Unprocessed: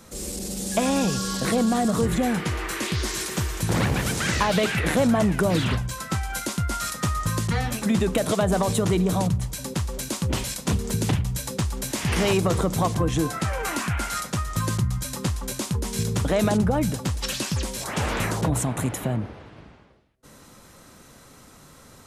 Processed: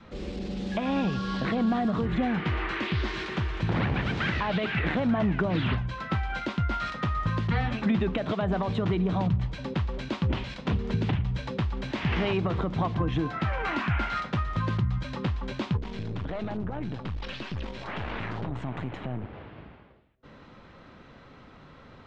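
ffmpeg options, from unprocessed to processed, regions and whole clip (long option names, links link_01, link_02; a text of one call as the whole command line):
ffmpeg -i in.wav -filter_complex "[0:a]asettb=1/sr,asplit=3[link_01][link_02][link_03];[link_01]atrim=end=15.774[link_04];[link_02]atrim=start=15.77:end=19.33,asetpts=PTS-STARTPTS,afade=type=in:duration=0.004:curve=qsin,afade=type=out:start_time=3.556:duration=0.004:curve=qsin,acompressor=threshold=-25dB:ratio=4:attack=3.2:release=140:knee=1:detection=peak,aeval=exprs='(tanh(22.4*val(0)+0.7)-tanh(0.7))/22.4':channel_layout=same[link_05];[link_03]atrim=start=19.326[link_06];[link_04][link_05]acrossfade=duration=0.004:curve1=hsin:curve2=qsin[link_07];[link_07][link_06]acrossfade=duration=0.004:curve1=qsin:curve2=hsin,alimiter=limit=-16dB:level=0:latency=1:release=312,lowpass=frequency=3400:width=0.5412,lowpass=frequency=3400:width=1.3066,adynamicequalizer=threshold=0.00501:dfrequency=500:dqfactor=3.3:tfrequency=500:tqfactor=3.3:attack=5:release=100:ratio=0.375:range=2.5:mode=cutabove:tftype=bell" out.wav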